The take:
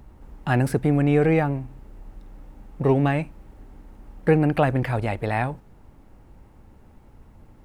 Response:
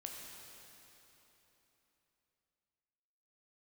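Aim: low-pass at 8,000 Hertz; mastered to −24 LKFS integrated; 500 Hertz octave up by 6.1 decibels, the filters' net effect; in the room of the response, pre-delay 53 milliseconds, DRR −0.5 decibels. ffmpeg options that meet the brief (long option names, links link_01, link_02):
-filter_complex "[0:a]lowpass=8000,equalizer=frequency=500:width_type=o:gain=7,asplit=2[link_01][link_02];[1:a]atrim=start_sample=2205,adelay=53[link_03];[link_02][link_03]afir=irnorm=-1:irlink=0,volume=3dB[link_04];[link_01][link_04]amix=inputs=2:normalize=0,volume=-6.5dB"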